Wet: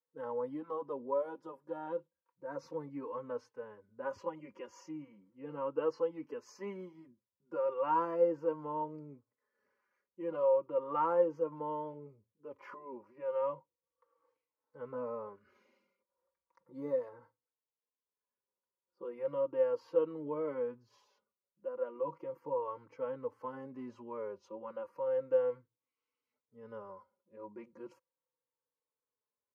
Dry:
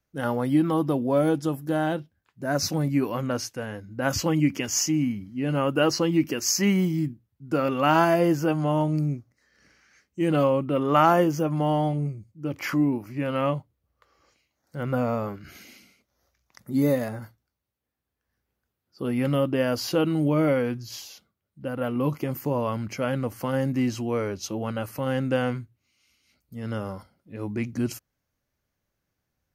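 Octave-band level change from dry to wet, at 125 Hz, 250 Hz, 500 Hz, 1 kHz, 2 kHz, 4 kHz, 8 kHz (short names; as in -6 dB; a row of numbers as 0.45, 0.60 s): -28.5 dB, -21.5 dB, -7.5 dB, -11.0 dB, -21.5 dB, under -30 dB, under -35 dB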